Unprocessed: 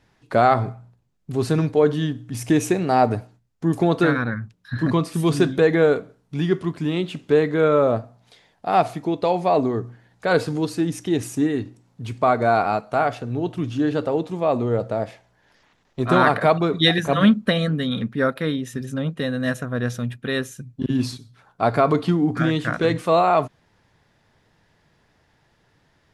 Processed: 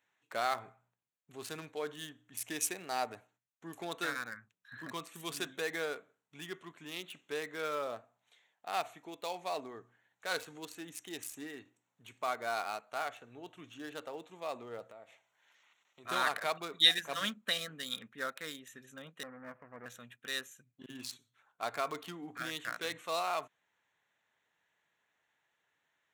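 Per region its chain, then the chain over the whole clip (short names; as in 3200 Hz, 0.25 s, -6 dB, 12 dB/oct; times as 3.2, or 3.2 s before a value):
14.91–16.05 notch 1700 Hz, Q 8.4 + compressor 2:1, threshold -35 dBFS + mismatched tape noise reduction encoder only
19.23–19.86 minimum comb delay 0.35 ms + steep low-pass 1700 Hz
whole clip: Wiener smoothing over 9 samples; differentiator; gain +1.5 dB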